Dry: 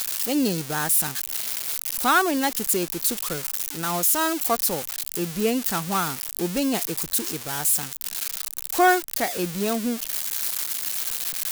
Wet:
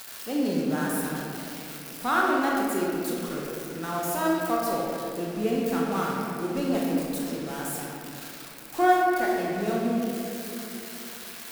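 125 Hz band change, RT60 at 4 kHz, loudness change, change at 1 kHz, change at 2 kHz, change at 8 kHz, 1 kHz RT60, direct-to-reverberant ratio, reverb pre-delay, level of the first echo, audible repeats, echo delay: −1.5 dB, 1.5 s, −4.5 dB, −1.0 dB, −3.5 dB, −13.5 dB, 2.4 s, −4.0 dB, 25 ms, no echo audible, no echo audible, no echo audible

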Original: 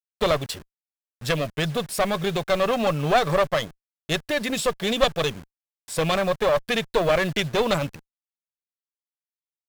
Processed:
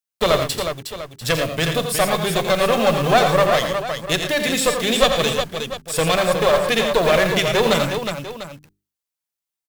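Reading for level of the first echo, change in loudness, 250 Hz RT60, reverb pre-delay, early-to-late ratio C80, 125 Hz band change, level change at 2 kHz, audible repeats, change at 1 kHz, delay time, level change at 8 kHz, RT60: −15.5 dB, +5.0 dB, no reverb audible, no reverb audible, no reverb audible, +4.0 dB, +6.0 dB, 4, +5.5 dB, 45 ms, +9.0 dB, no reverb audible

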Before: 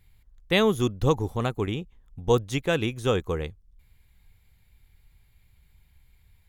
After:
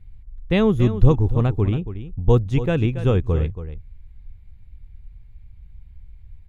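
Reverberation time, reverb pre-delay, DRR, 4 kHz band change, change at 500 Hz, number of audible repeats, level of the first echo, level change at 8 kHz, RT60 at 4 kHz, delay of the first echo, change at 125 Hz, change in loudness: no reverb audible, no reverb audible, no reverb audible, −5.5 dB, +2.5 dB, 1, −12.0 dB, below −10 dB, no reverb audible, 279 ms, +11.0 dB, +5.5 dB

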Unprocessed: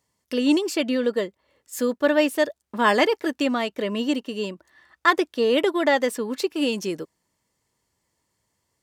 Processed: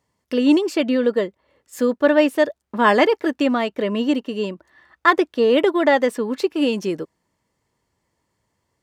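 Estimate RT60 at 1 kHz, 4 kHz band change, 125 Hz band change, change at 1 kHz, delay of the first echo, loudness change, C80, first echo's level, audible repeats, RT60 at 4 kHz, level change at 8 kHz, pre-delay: no reverb audible, 0.0 dB, can't be measured, +4.0 dB, no echo audible, +4.0 dB, no reverb audible, no echo audible, no echo audible, no reverb audible, can't be measured, no reverb audible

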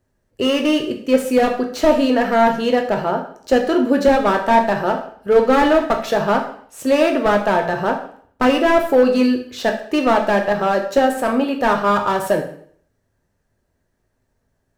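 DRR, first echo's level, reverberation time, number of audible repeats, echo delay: 3.0 dB, no echo audible, 0.55 s, no echo audible, no echo audible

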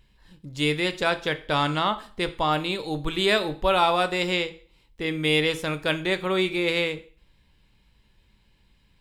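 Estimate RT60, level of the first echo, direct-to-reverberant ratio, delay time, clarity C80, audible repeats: 0.45 s, no echo audible, 10.0 dB, no echo audible, 20.5 dB, no echo audible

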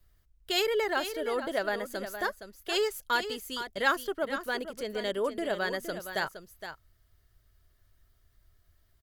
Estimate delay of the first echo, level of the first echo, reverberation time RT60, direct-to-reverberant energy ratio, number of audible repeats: 466 ms, −10.0 dB, no reverb audible, no reverb audible, 1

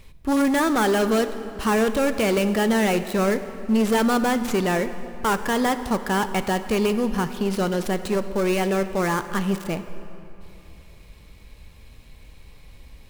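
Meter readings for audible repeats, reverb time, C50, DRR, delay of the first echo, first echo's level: no echo audible, 3.0 s, 11.5 dB, 10.5 dB, no echo audible, no echo audible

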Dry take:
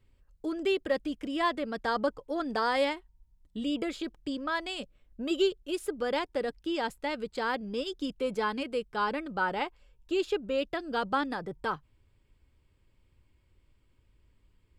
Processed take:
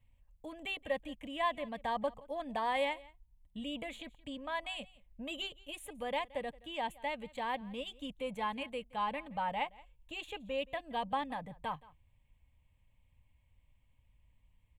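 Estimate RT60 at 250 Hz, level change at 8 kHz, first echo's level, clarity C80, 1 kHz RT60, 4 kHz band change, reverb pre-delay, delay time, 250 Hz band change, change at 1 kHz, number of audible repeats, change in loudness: no reverb audible, −6.5 dB, −22.0 dB, no reverb audible, no reverb audible, −5.0 dB, no reverb audible, 173 ms, −11.0 dB, −3.5 dB, 1, −6.5 dB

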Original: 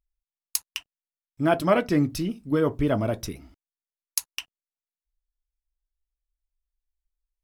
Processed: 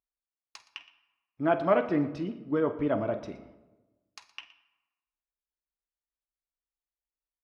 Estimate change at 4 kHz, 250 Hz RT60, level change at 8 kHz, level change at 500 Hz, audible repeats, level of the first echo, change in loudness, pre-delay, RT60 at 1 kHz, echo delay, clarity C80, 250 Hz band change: −12.0 dB, 1.3 s, below −25 dB, −2.5 dB, 2, −16.0 dB, −3.0 dB, 34 ms, 1.1 s, 48 ms, 14.0 dB, −5.0 dB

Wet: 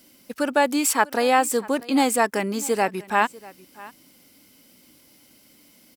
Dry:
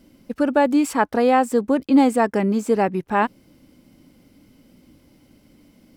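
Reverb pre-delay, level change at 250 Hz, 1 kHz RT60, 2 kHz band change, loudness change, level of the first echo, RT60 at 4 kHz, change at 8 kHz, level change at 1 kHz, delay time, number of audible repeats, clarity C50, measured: no reverb audible, −6.5 dB, no reverb audible, +3.0 dB, −2.5 dB, −21.0 dB, no reverb audible, +10.5 dB, −1.0 dB, 643 ms, 1, no reverb audible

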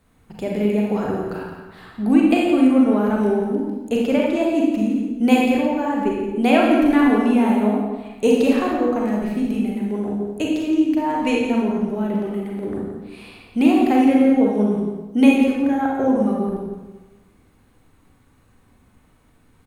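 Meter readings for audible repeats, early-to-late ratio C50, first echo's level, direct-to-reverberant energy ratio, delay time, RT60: 1, −0.5 dB, −8.5 dB, −3.0 dB, 171 ms, 1.1 s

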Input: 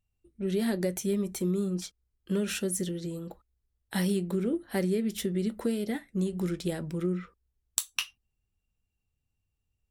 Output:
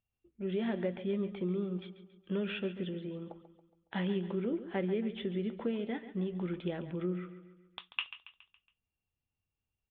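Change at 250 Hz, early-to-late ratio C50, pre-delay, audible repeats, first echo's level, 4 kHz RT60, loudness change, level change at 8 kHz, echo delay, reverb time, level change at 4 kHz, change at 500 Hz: −5.5 dB, no reverb audible, no reverb audible, 4, −13.0 dB, no reverb audible, −5.0 dB, below −40 dB, 139 ms, no reverb audible, −6.0 dB, −4.0 dB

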